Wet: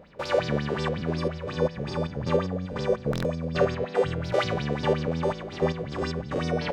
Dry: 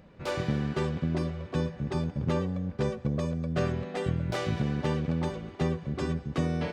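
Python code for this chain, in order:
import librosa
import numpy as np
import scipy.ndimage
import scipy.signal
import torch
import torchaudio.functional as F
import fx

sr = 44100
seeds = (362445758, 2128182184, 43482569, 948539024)

y = fx.spec_steps(x, sr, hold_ms=100)
y = fx.echo_wet_highpass(y, sr, ms=389, feedback_pct=76, hz=1800.0, wet_db=-16)
y = fx.buffer_glitch(y, sr, at_s=(3.11,), block=1024, repeats=5)
y = fx.bell_lfo(y, sr, hz=5.5, low_hz=430.0, high_hz=5500.0, db=18)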